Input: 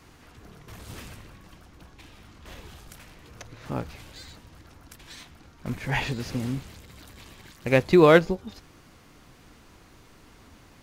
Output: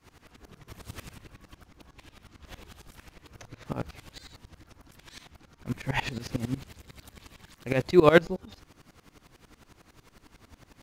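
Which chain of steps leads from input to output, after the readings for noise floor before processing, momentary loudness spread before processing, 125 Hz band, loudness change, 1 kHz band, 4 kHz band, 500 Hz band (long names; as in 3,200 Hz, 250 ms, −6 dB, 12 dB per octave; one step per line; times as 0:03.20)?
−54 dBFS, 25 LU, −3.5 dB, −3.5 dB, −3.5 dB, −3.0 dB, −3.5 dB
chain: tremolo with a ramp in dB swelling 11 Hz, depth 20 dB
level +3.5 dB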